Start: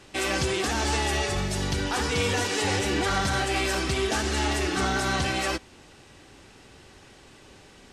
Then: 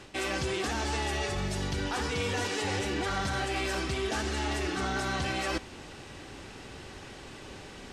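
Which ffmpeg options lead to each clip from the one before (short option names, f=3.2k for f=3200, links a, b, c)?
-af "highshelf=f=6.6k:g=-5.5,areverse,acompressor=threshold=-37dB:ratio=4,areverse,volume=6dB"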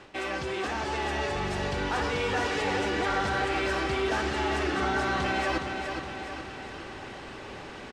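-filter_complex "[0:a]aecho=1:1:416|832|1248|1664|2080|2496|2912:0.447|0.246|0.135|0.0743|0.0409|0.0225|0.0124,dynaudnorm=f=200:g=13:m=3.5dB,asplit=2[a][b];[b]highpass=f=720:p=1,volume=9dB,asoftclip=type=tanh:threshold=-14.5dB[c];[a][c]amix=inputs=2:normalize=0,lowpass=f=1.4k:p=1,volume=-6dB"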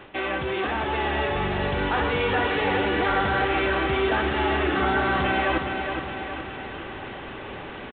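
-af "aresample=8000,aresample=44100,volume=5dB"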